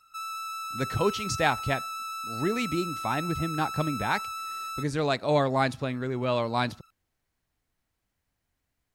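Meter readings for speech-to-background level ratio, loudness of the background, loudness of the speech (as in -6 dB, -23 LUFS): 5.5 dB, -34.5 LUFS, -29.0 LUFS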